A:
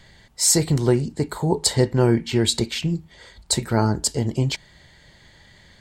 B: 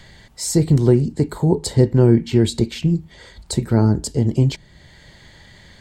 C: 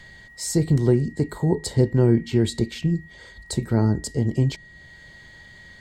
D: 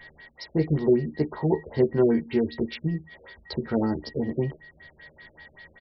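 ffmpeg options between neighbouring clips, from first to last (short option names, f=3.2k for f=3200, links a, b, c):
-filter_complex "[0:a]acrossover=split=460[a][b];[b]acompressor=threshold=-54dB:ratio=1.5[c];[a][c]amix=inputs=2:normalize=0,volume=6dB"
-af "aeval=exprs='val(0)+0.00891*sin(2*PI*1900*n/s)':c=same,volume=-4.5dB"
-filter_complex "[0:a]bass=f=250:g=-11,treble=f=4k:g=-3,asplit=2[a][b];[b]adelay=13,volume=-2.5dB[c];[a][c]amix=inputs=2:normalize=0,afftfilt=real='re*lt(b*sr/1024,610*pow(5900/610,0.5+0.5*sin(2*PI*5.2*pts/sr)))':imag='im*lt(b*sr/1024,610*pow(5900/610,0.5+0.5*sin(2*PI*5.2*pts/sr)))':win_size=1024:overlap=0.75"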